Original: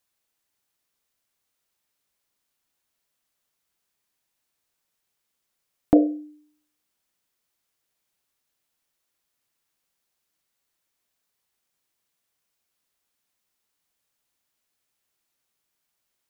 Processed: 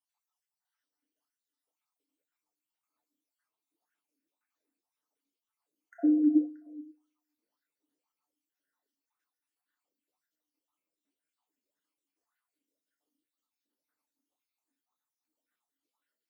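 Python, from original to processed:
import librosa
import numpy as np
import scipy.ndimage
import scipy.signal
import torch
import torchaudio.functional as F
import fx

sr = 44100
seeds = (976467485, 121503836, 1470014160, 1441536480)

y = fx.spec_dropout(x, sr, seeds[0], share_pct=69)
y = fx.ladder_highpass(y, sr, hz=200.0, resonance_pct=40)
y = fx.echo_feedback(y, sr, ms=314, feedback_pct=19, wet_db=-13.0)
y = fx.rev_fdn(y, sr, rt60_s=0.43, lf_ratio=1.55, hf_ratio=0.95, size_ms=20.0, drr_db=0.5)
y = fx.bell_lfo(y, sr, hz=1.9, low_hz=260.0, high_hz=1600.0, db=17)
y = y * 10.0 ** (-3.5 / 20.0)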